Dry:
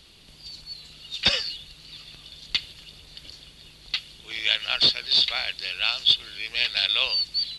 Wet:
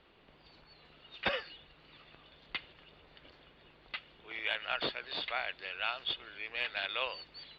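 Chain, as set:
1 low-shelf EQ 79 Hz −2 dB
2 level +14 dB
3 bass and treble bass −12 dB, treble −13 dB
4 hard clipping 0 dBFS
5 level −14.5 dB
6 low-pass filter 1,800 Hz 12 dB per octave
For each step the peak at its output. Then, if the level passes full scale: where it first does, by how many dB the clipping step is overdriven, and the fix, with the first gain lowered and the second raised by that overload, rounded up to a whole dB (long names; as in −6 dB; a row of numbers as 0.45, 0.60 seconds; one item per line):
−5.0, +9.0, +5.5, 0.0, −14.5, −18.0 dBFS
step 2, 5.5 dB
step 2 +8 dB, step 5 −8.5 dB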